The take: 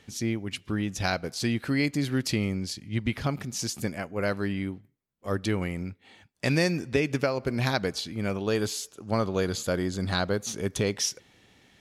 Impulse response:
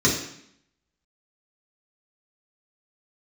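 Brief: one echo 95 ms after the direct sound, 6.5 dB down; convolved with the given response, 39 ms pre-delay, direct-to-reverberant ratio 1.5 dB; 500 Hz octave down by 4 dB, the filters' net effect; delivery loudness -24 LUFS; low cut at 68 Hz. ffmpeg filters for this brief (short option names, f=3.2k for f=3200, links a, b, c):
-filter_complex "[0:a]highpass=68,equalizer=f=500:t=o:g=-5,aecho=1:1:95:0.473,asplit=2[a][b];[1:a]atrim=start_sample=2205,adelay=39[c];[b][c]afir=irnorm=-1:irlink=0,volume=-18dB[d];[a][d]amix=inputs=2:normalize=0,volume=-0.5dB"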